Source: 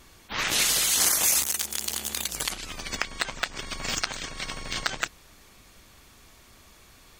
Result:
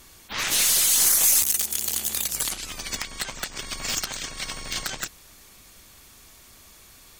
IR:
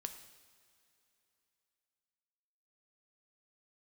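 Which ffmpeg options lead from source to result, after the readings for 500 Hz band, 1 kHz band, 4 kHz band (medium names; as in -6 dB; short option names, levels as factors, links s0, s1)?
-2.0 dB, -2.5 dB, +1.0 dB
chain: -af "aeval=exprs='0.841*(cos(1*acos(clip(val(0)/0.841,-1,1)))-cos(1*PI/2))+0.299*(cos(4*acos(clip(val(0)/0.841,-1,1)))-cos(4*PI/2))':c=same,asoftclip=type=tanh:threshold=0.112,aemphasis=mode=production:type=cd"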